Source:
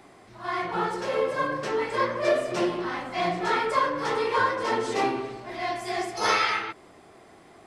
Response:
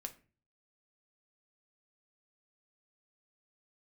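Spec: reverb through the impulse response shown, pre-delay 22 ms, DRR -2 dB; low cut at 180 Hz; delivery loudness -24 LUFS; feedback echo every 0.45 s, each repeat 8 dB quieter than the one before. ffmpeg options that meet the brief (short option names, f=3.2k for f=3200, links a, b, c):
-filter_complex "[0:a]highpass=180,aecho=1:1:450|900|1350|1800|2250:0.398|0.159|0.0637|0.0255|0.0102,asplit=2[a][b];[1:a]atrim=start_sample=2205,adelay=22[c];[b][c]afir=irnorm=-1:irlink=0,volume=5.5dB[d];[a][d]amix=inputs=2:normalize=0,volume=-1.5dB"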